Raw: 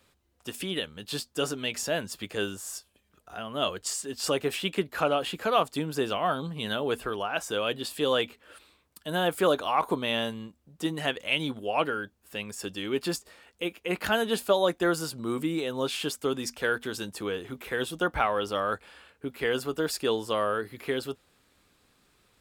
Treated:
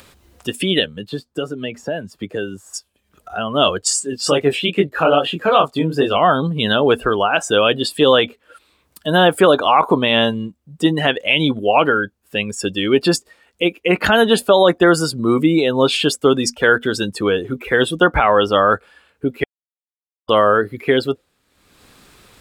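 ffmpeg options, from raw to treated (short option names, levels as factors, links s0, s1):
-filter_complex "[0:a]asettb=1/sr,asplit=3[s0][s1][s2];[s0]atrim=end=0.844[s3];[s1]atrim=start=0.84:end=2.74,asetpts=PTS-STARTPTS,afade=t=in:d=0.004:c=qsin,afade=t=out:st=1.896:d=0.004:c=qsin,acrossover=split=120|1800[s4][s5][s6];[s4]acompressor=threshold=0.00141:ratio=4[s7];[s5]acompressor=threshold=0.0141:ratio=4[s8];[s6]acompressor=threshold=0.00398:ratio=4[s9];[s7][s8][s9]amix=inputs=3:normalize=0[s10];[s2]atrim=start=2.736[s11];[s3][s10]acrossfade=d=0.004:c1=hsin:c2=qsin[s12];[s12][s11]acrossfade=d=0.004:c1=qsin:c2=hsin,asettb=1/sr,asplit=3[s13][s14][s15];[s13]atrim=end=3.994[s16];[s14]atrim=start=3.99:end=6.16,asetpts=PTS-STARTPTS,afade=t=in:d=0.004:c=qsin,afade=t=out:st=2.166:d=0.004:c=qsin,flanger=delay=20:depth=4.8:speed=2.4[s17];[s15]atrim=start=6.156[s18];[s16][s17]acrossfade=d=0.004:c1=hsin:c2=qsin[s19];[s19][s18]acrossfade=d=0.004:c1=qsin:c2=hsin,asplit=3[s20][s21][s22];[s20]atrim=end=19.44,asetpts=PTS-STARTPTS,afade=t=out:st=19.436:d=0.004:c=hsin[s23];[s21]atrim=start=19.44:end=20.29,asetpts=PTS-STARTPTS,volume=0[s24];[s22]atrim=start=20.29,asetpts=PTS-STARTPTS,afade=t=in:d=0.004:c=hsin[s25];[s23][s24][s25]concat=n=3:v=0:a=1,afftdn=nr=16:nf=-40,acompressor=mode=upward:threshold=0.00447:ratio=2.5,alimiter=level_in=6.31:limit=0.891:release=50:level=0:latency=1,volume=0.891"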